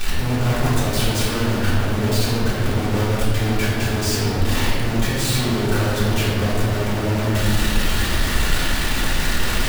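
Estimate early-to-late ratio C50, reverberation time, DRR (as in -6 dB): -1.0 dB, 2.1 s, -8.5 dB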